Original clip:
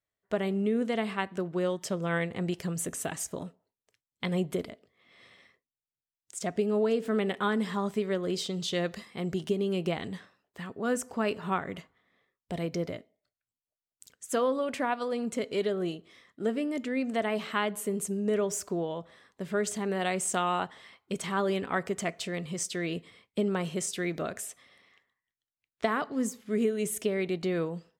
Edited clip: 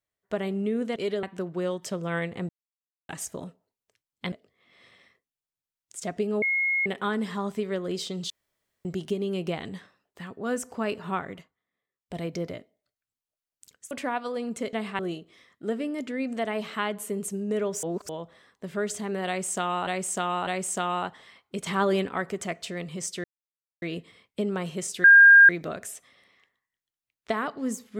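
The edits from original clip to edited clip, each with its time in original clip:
0.96–1.22 swap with 15.49–15.76
2.48–3.08 mute
4.31–4.71 cut
6.81–7.25 bleep 2160 Hz -22 dBFS
8.69–9.24 room tone
11.64–12.57 dip -15 dB, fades 0.29 s
14.3–14.67 cut
18.6–18.86 reverse
20.04–20.64 loop, 3 plays
21.23–21.63 gain +4.5 dB
22.81 insert silence 0.58 s
24.03 add tone 1610 Hz -9 dBFS 0.45 s

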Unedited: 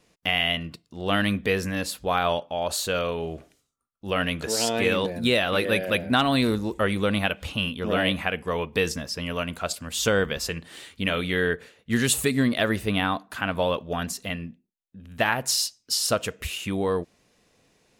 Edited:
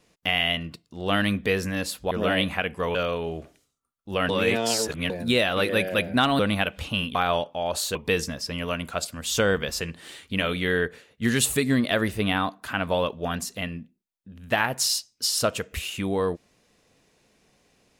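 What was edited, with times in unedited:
2.11–2.91 swap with 7.79–8.63
4.25–5.06 reverse
6.35–7.03 cut

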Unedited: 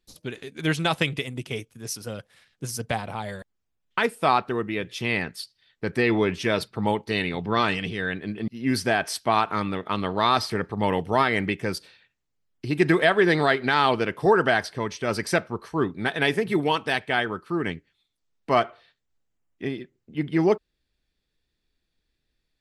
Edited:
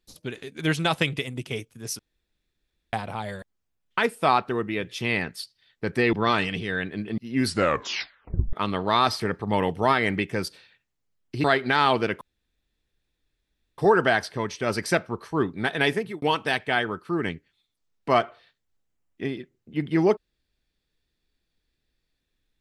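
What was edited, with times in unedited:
1.99–2.93 room tone
6.13–7.43 cut
8.74 tape stop 1.09 s
12.74–13.42 cut
14.19 insert room tone 1.57 s
16.32–16.63 fade out

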